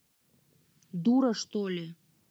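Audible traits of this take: phasing stages 2, 0.97 Hz, lowest notch 630–2600 Hz; a quantiser's noise floor 12-bit, dither triangular

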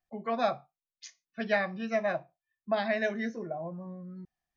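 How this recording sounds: noise floor -95 dBFS; spectral tilt -3.5 dB/octave

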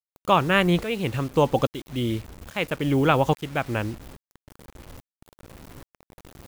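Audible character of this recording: tremolo saw up 1.2 Hz, depth 85%; a quantiser's noise floor 8-bit, dither none

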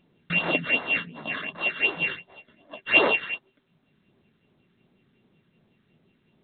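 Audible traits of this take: a buzz of ramps at a fixed pitch in blocks of 16 samples; phasing stages 8, 2.7 Hz, lowest notch 730–2700 Hz; A-law

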